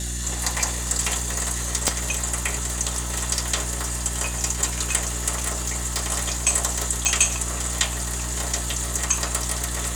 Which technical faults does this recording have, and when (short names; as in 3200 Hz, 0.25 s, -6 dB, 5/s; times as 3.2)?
hum 60 Hz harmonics 6 -30 dBFS
1.88 pop -2 dBFS
5.46–6 clipped -19 dBFS
7.05 pop